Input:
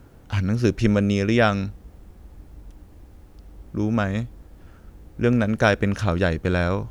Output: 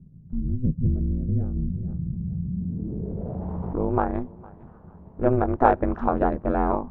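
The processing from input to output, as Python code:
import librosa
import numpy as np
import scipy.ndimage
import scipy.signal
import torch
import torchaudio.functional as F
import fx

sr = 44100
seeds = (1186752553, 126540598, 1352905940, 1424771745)

y = fx.echo_feedback(x, sr, ms=456, feedback_pct=29, wet_db=-24.0)
y = y * np.sin(2.0 * np.pi * 130.0 * np.arange(len(y)) / sr)
y = fx.wow_flutter(y, sr, seeds[0], rate_hz=2.1, depth_cents=26.0)
y = fx.filter_sweep_lowpass(y, sr, from_hz=150.0, to_hz=940.0, start_s=2.42, end_s=3.54, q=3.1)
y = fx.env_flatten(y, sr, amount_pct=70, at=(1.56, 3.83))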